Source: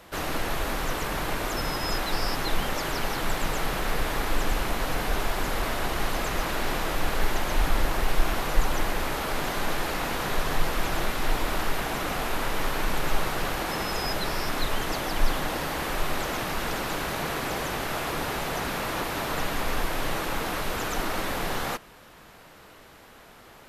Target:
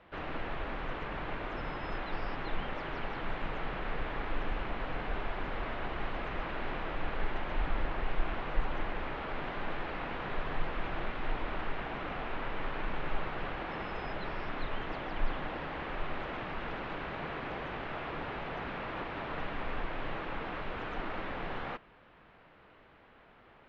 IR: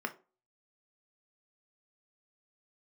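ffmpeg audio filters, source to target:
-af "lowpass=f=3000:w=0.5412,lowpass=f=3000:w=1.3066,volume=0.376"

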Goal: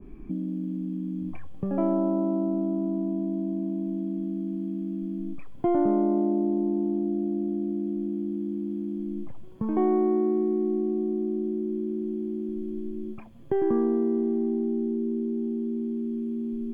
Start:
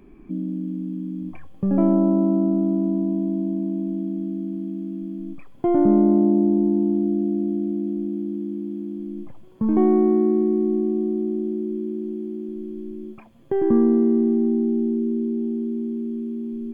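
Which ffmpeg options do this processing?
-filter_complex "[0:a]lowshelf=f=190:g=9.5,acrossover=split=380[s0][s1];[s0]acompressor=threshold=0.0398:ratio=10[s2];[s2][s1]amix=inputs=2:normalize=0,adynamicequalizer=threshold=0.0126:dfrequency=1700:dqfactor=0.7:tfrequency=1700:tqfactor=0.7:attack=5:release=100:ratio=0.375:range=1.5:mode=cutabove:tftype=highshelf,volume=0.794"

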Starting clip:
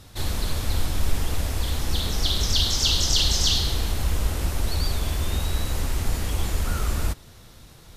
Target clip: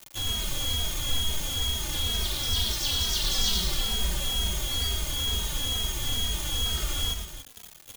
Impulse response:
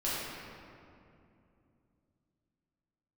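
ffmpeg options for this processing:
-filter_complex "[0:a]asettb=1/sr,asplit=3[s0][s1][s2];[s0]atrim=end=3.244[s3];[s1]atrim=start=3.24:end=4.44,asetpts=PTS-STARTPTS,afade=t=in:d=0.004:c=qsin,afade=t=out:st=1.196:d=0.004:c=qsin,aecho=1:1:5.2:0.87,atrim=end_sample=52920[s4];[s2]atrim=start=4.436[s5];[s3][s4]acrossfade=d=0.004:c1=hsin:c2=qsin[s6];[s6][s5]acrossfade=d=0.004:c1=qsin:c2=hsin,aeval=exprs='val(0)+0.0631*sin(2*PI*3300*n/s)':c=same,acrusher=bits=3:mix=0:aa=0.000001,aecho=1:1:113.7|285.7:0.501|0.316,asplit=2[s7][s8];[s8]adelay=2.8,afreqshift=-2.2[s9];[s7][s9]amix=inputs=2:normalize=1,volume=0.501"

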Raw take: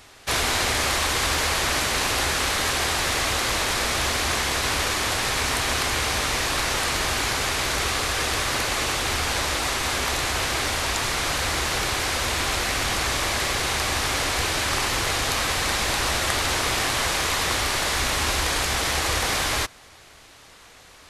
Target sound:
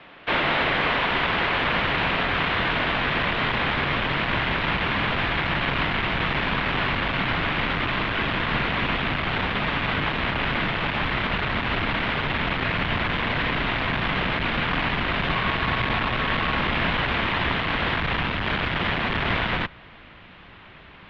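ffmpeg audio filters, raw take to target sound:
-filter_complex "[0:a]asubboost=boost=5.5:cutoff=220,asettb=1/sr,asplit=3[s0][s1][s2];[s0]atrim=end=15.294[s3];[s1]atrim=start=15.29:end=16.61,asetpts=PTS-STARTPTS,afade=t=in:d=0.004:c=qsin,afade=t=out:st=1.316:d=0.004:c=qsin,aeval=exprs='val(0)+0.0224*sin(2*PI*1200*n/s)':c=same[s4];[s2]atrim=start=16.606[s5];[s3][s4]acrossfade=d=0.004:c1=hsin:c2=qsin[s6];[s6][s5]acrossfade=d=0.004:c1=qsin:c2=hsin,asoftclip=type=tanh:threshold=0.178,highpass=f=160:t=q:w=0.5412,highpass=f=160:t=q:w=1.307,lowpass=f=3300:t=q:w=0.5176,lowpass=f=3300:t=q:w=0.7071,lowpass=f=3300:t=q:w=1.932,afreqshift=-100,volume=1.68"

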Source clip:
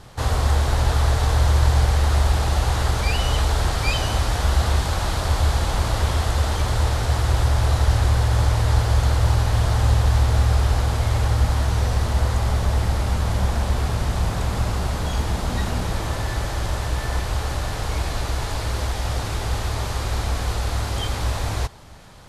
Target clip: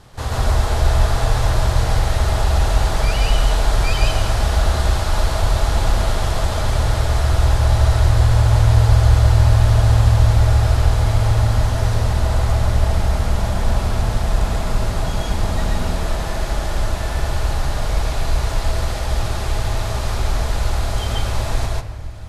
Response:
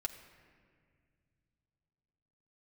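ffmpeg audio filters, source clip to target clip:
-filter_complex "[0:a]asplit=2[s0][s1];[s1]equalizer=f=620:t=o:w=0.27:g=6[s2];[1:a]atrim=start_sample=2205,lowshelf=f=73:g=8,adelay=136[s3];[s2][s3]afir=irnorm=-1:irlink=0,volume=1.19[s4];[s0][s4]amix=inputs=2:normalize=0,volume=0.794"

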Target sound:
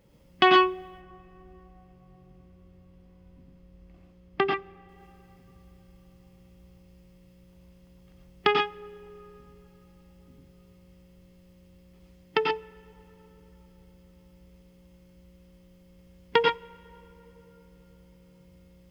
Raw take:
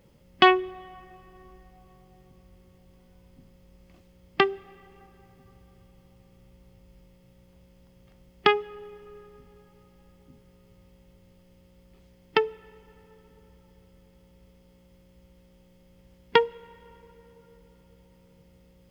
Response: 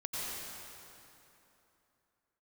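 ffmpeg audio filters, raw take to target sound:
-filter_complex "[0:a]asettb=1/sr,asplit=3[s0][s1][s2];[s0]atrim=end=0.884[s3];[s1]atrim=start=0.88:end=4.89,asetpts=PTS-STARTPTS,afade=t=in:d=0.004:c=qsin,afade=t=out:st=4.006:d=0.004:c=qsin,highshelf=f=3400:g=-12[s4];[s2]atrim=start=4.886[s5];[s3][s4]acrossfade=d=0.004:c1=hsin:c2=qsin[s6];[s6][s5]acrossfade=d=0.004:c1=qsin:c2=hsin[s7];[1:a]atrim=start_sample=2205,atrim=end_sample=6174[s8];[s7][s8]afir=irnorm=-1:irlink=0,volume=1.12"

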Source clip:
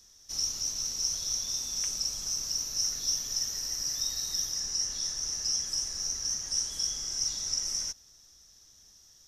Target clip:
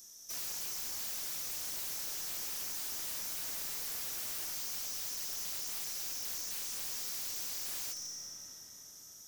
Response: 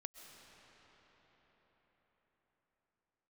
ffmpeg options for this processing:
-filter_complex "[0:a]asplit=2[s0][s1];[s1]alimiter=level_in=1.06:limit=0.0631:level=0:latency=1:release=139,volume=0.944,volume=0.944[s2];[s0][s2]amix=inputs=2:normalize=0,lowshelf=f=430:g=5.5[s3];[1:a]atrim=start_sample=2205[s4];[s3][s4]afir=irnorm=-1:irlink=0,aexciter=amount=4.6:drive=1.5:freq=6600,highpass=170,aeval=exprs='(mod(28.2*val(0)+1,2)-1)/28.2':c=same,aeval=exprs='0.0355*(cos(1*acos(clip(val(0)/0.0355,-1,1)))-cos(1*PI/2))+0.00316*(cos(4*acos(clip(val(0)/0.0355,-1,1)))-cos(4*PI/2))':c=same,asoftclip=type=tanh:threshold=0.0126,highshelf=f=5600:g=5,volume=0.708"

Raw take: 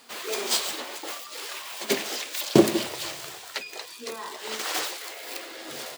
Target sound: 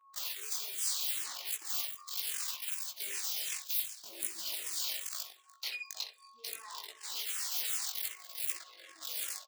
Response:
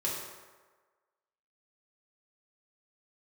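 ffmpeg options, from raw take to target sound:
-filter_complex "[0:a]acontrast=42,asplit=2[s0][s1];[s1]adelay=220,highpass=300,lowpass=3400,asoftclip=type=hard:threshold=0.316,volume=0.2[s2];[s0][s2]amix=inputs=2:normalize=0,atempo=0.63,anlmdn=25.1,asplit=2[s3][s4];[s4]adelay=65,lowpass=f=2800:p=1,volume=0.376,asplit=2[s5][s6];[s6]adelay=65,lowpass=f=2800:p=1,volume=0.15[s7];[s5][s7]amix=inputs=2:normalize=0[s8];[s3][s8]amix=inputs=2:normalize=0,aeval=exprs='val(0)+0.00501*sin(2*PI*1100*n/s)':c=same,areverse,acompressor=threshold=0.0282:ratio=12,areverse,highpass=f=180:p=1,flanger=delay=18:depth=3.9:speed=0.71,aderivative,asplit=2[s9][s10];[s10]afreqshift=-2.6[s11];[s9][s11]amix=inputs=2:normalize=1,volume=2.37"

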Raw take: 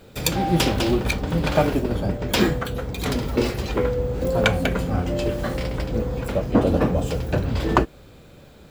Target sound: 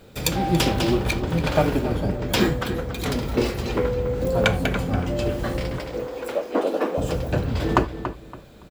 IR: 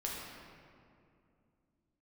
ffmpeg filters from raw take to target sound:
-filter_complex "[0:a]asettb=1/sr,asplit=3[s0][s1][s2];[s0]atrim=end=5.784[s3];[s1]atrim=start=5.78:end=6.98,asetpts=PTS-STARTPTS,afade=t=in:d=0.004:c=qsin,afade=t=out:st=1.196:d=0.004:c=qsin,highpass=f=320:w=0.5412,highpass=f=320:w=1.3066[s4];[s2]atrim=start=6.976[s5];[s3][s4]acrossfade=d=0.004:c1=hsin:c2=qsin[s6];[s6][s5]acrossfade=d=0.004:c1=qsin:c2=hsin,asplit=2[s7][s8];[s8]adelay=283,lowpass=f=3300:p=1,volume=0.316,asplit=2[s9][s10];[s10]adelay=283,lowpass=f=3300:p=1,volume=0.26,asplit=2[s11][s12];[s12]adelay=283,lowpass=f=3300:p=1,volume=0.26[s13];[s7][s9][s11][s13]amix=inputs=4:normalize=0,asplit=2[s14][s15];[1:a]atrim=start_sample=2205,atrim=end_sample=4410[s16];[s15][s16]afir=irnorm=-1:irlink=0,volume=0.2[s17];[s14][s17]amix=inputs=2:normalize=0,volume=0.794"

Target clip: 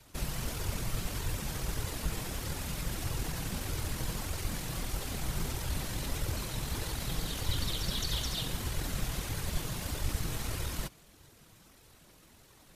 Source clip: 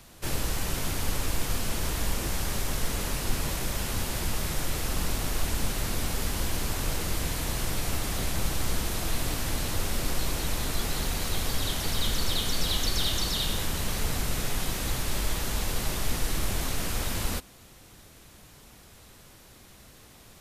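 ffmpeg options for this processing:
-af "afftfilt=real='hypot(re,im)*cos(2*PI*random(0))':imag='hypot(re,im)*sin(2*PI*random(1))':win_size=512:overlap=0.75,atempo=1.6,flanger=delay=2:depth=4.5:regen=-40:speed=1.6:shape=sinusoidal,volume=1.58"

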